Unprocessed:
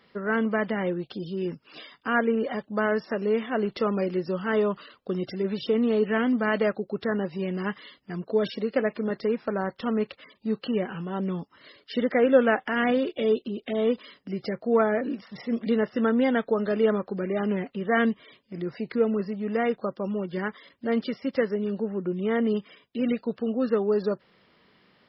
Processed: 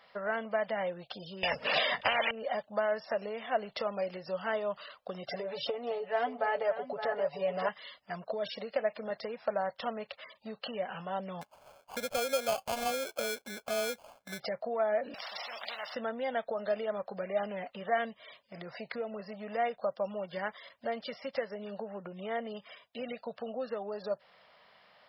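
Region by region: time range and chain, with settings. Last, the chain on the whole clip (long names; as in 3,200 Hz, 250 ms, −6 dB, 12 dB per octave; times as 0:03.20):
0:01.43–0:02.31: low-pass that shuts in the quiet parts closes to 2,700 Hz, open at −19.5 dBFS + hollow resonant body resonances 220/480/1,800 Hz, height 12 dB, ringing for 20 ms + every bin compressed towards the loudest bin 10 to 1
0:05.30–0:07.69: parametric band 690 Hz +8 dB 2 octaves + comb filter 7 ms, depth 81% + single-tap delay 566 ms −12 dB
0:11.41–0:14.40: low-pass filter 3,300 Hz + high-shelf EQ 2,200 Hz −10.5 dB + sample-rate reduction 1,900 Hz
0:15.14–0:15.95: high-pass filter 800 Hz + every bin compressed towards the loudest bin 4 to 1
whole clip: dynamic equaliser 1,200 Hz, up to −6 dB, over −41 dBFS, Q 1.1; downward compressor 6 to 1, threshold −27 dBFS; low shelf with overshoot 470 Hz −10.5 dB, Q 3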